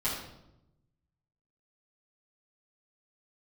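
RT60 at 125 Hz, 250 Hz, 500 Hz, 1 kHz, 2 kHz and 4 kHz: 1.5, 1.2, 0.95, 0.80, 0.65, 0.65 s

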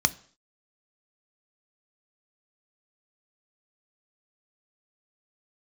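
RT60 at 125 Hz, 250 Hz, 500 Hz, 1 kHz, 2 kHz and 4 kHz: 0.45, 0.50, 0.50, 0.50, 0.50, 0.55 s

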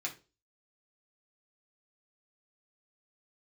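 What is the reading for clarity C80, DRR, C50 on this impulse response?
20.0 dB, -2.0 dB, 13.5 dB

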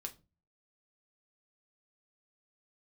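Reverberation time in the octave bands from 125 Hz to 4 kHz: 0.55, 0.50, 0.35, 0.25, 0.20, 0.25 s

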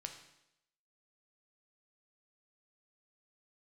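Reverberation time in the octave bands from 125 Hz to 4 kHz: 0.80, 0.80, 0.85, 0.80, 0.80, 0.80 s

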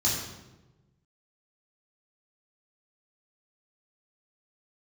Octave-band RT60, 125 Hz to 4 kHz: 1.7, 1.4, 1.3, 0.95, 0.85, 0.75 s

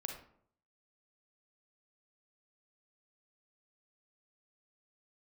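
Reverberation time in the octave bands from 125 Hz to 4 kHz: 0.75, 0.65, 0.65, 0.60, 0.45, 0.35 s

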